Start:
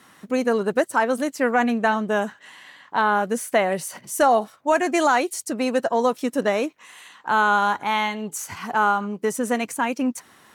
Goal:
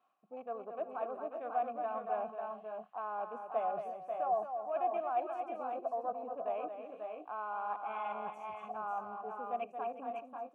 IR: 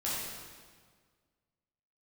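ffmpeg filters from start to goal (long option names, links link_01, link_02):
-filter_complex "[0:a]afwtdn=0.0355,equalizer=frequency=5500:width=0.33:gain=-5.5,areverse,acompressor=threshold=-34dB:ratio=5,areverse,asplit=3[link_01][link_02][link_03];[link_01]bandpass=frequency=730:width_type=q:width=8,volume=0dB[link_04];[link_02]bandpass=frequency=1090:width_type=q:width=8,volume=-6dB[link_05];[link_03]bandpass=frequency=2440:width_type=q:width=8,volume=-9dB[link_06];[link_04][link_05][link_06]amix=inputs=3:normalize=0,aecho=1:1:226|360|541|564:0.422|0.188|0.531|0.316,asplit=2[link_07][link_08];[1:a]atrim=start_sample=2205,atrim=end_sample=3969[link_09];[link_08][link_09]afir=irnorm=-1:irlink=0,volume=-22.5dB[link_10];[link_07][link_10]amix=inputs=2:normalize=0,volume=5.5dB"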